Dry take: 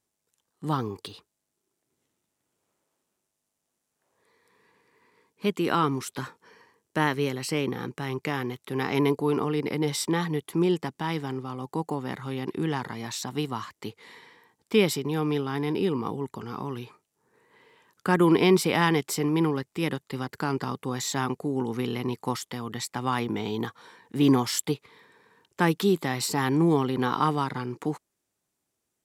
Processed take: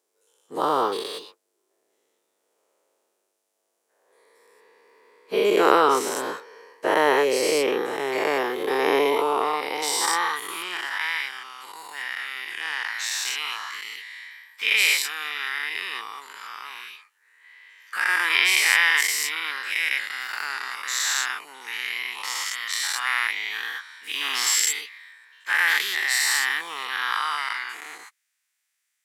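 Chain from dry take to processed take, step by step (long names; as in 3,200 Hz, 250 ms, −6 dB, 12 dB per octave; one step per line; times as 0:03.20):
every bin's largest magnitude spread in time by 240 ms
high-pass filter sweep 470 Hz → 1,900 Hz, 0:08.79–0:11.20
level −1 dB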